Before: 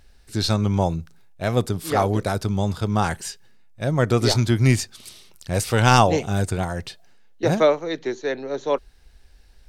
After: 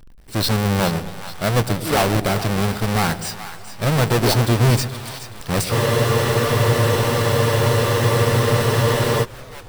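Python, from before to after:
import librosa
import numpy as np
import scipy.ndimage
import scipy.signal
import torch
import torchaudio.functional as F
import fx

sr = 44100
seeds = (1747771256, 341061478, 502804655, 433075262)

y = fx.halfwave_hold(x, sr)
y = fx.peak_eq(y, sr, hz=88.0, db=-13.0, octaves=0.26)
y = fx.notch(y, sr, hz=6700.0, q=8.5)
y = 10.0 ** (-13.0 / 20.0) * np.tanh(y / 10.0 ** (-13.0 / 20.0))
y = fx.echo_split(y, sr, split_hz=720.0, low_ms=117, high_ms=425, feedback_pct=52, wet_db=-12.0)
y = fx.spec_freeze(y, sr, seeds[0], at_s=5.73, hold_s=3.51)
y = fx.echo_warbled(y, sr, ms=318, feedback_pct=67, rate_hz=2.8, cents=146, wet_db=-24.0)
y = y * 10.0 ** (1.5 / 20.0)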